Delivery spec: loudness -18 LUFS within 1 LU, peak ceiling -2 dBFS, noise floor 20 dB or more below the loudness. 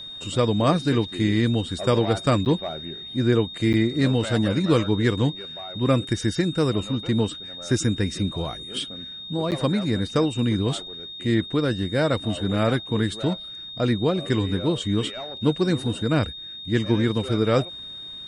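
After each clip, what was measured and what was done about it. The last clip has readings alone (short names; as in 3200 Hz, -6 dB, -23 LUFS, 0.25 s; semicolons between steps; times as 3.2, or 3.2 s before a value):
dropouts 3; longest dropout 8.8 ms; steady tone 3700 Hz; tone level -35 dBFS; loudness -24.0 LUFS; peak -6.5 dBFS; loudness target -18.0 LUFS
-> interpolate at 2.45/3.73/9.51, 8.8 ms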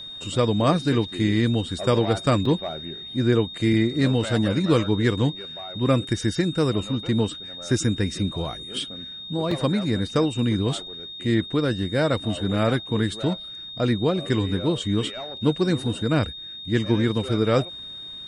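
dropouts 0; steady tone 3700 Hz; tone level -35 dBFS
-> notch 3700 Hz, Q 30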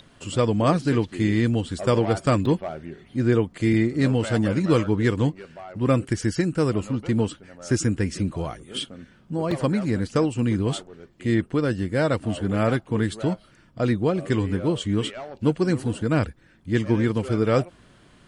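steady tone none; loudness -24.0 LUFS; peak -7.0 dBFS; loudness target -18.0 LUFS
-> gain +6 dB; limiter -2 dBFS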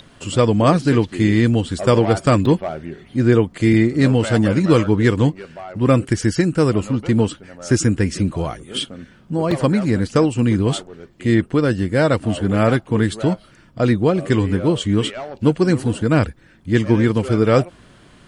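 loudness -18.0 LUFS; peak -2.0 dBFS; noise floor -49 dBFS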